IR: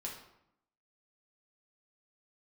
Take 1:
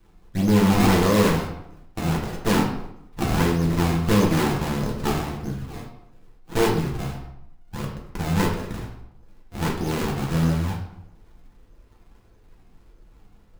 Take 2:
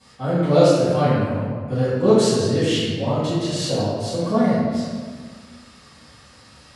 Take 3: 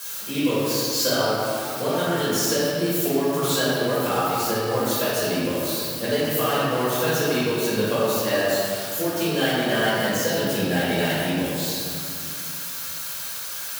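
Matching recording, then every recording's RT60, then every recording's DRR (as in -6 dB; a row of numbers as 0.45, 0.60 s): 1; 0.75, 1.6, 2.6 s; -2.5, -16.5, -11.0 dB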